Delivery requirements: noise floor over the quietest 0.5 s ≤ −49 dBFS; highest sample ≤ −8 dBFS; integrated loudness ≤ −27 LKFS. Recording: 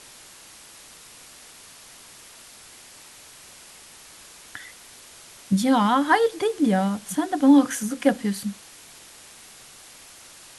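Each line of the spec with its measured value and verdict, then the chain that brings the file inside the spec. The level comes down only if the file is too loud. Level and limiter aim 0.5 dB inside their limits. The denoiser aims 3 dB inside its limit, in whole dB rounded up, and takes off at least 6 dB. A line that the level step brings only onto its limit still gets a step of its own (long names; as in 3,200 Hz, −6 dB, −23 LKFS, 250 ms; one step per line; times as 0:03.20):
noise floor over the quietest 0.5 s −47 dBFS: out of spec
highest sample −6.0 dBFS: out of spec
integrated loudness −21.5 LKFS: out of spec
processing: level −6 dB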